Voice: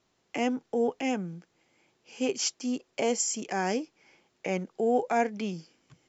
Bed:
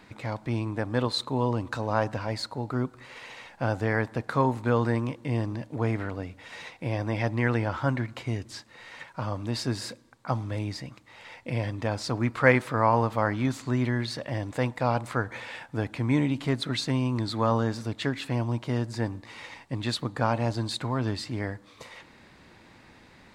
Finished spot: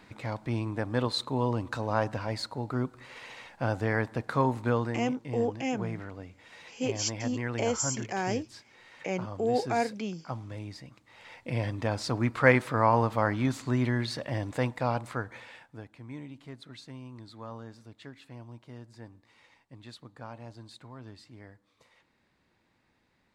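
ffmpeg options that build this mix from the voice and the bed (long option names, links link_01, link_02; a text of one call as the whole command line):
ffmpeg -i stem1.wav -i stem2.wav -filter_complex "[0:a]adelay=4600,volume=-2dB[link_01];[1:a]volume=5.5dB,afade=type=out:start_time=4.68:duration=0.26:silence=0.473151,afade=type=in:start_time=10.86:duration=0.78:silence=0.421697,afade=type=out:start_time=14.5:duration=1.39:silence=0.141254[link_02];[link_01][link_02]amix=inputs=2:normalize=0" out.wav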